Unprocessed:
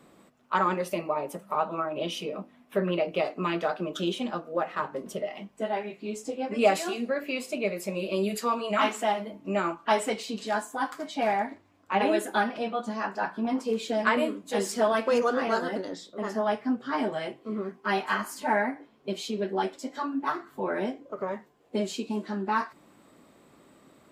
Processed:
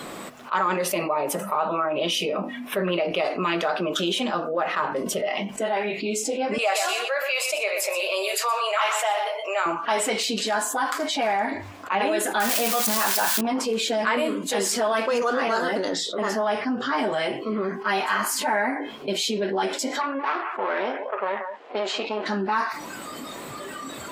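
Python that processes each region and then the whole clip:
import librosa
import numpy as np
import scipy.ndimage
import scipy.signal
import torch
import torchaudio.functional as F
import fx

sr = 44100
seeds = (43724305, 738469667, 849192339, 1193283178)

y = fx.chain(x, sr, fx.highpass(hz=560.0, slope=24),
    fx.echo_single(ms=123, db=-11.5), at=(6.58, 9.66))
y = fx.chain(y, sr, fx.crossing_spikes(level_db=-21.5),
    fx.env_flatten(amount_pct=50), at=(12.4, 13.41))
y = fx.chain(y, sr, fx.halfwave_gain(db=-12.0),
    fx.bandpass_edges(low_hz=410.0, high_hz=3200.0),
    fx.echo_single(ms=181, db=-21.0), at=(20.01, 22.26))
y = fx.noise_reduce_blind(y, sr, reduce_db=15)
y = fx.low_shelf(y, sr, hz=390.0, db=-9.5)
y = fx.env_flatten(y, sr, amount_pct=70)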